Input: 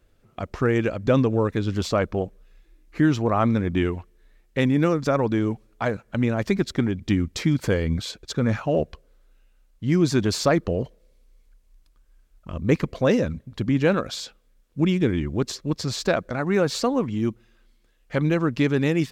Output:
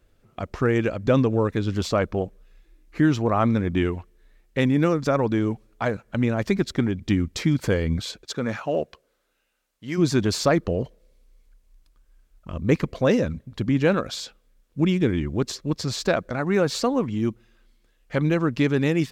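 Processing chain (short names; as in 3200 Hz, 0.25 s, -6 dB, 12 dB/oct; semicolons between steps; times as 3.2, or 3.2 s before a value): 8.21–9.97 HPF 290 Hz -> 660 Hz 6 dB/oct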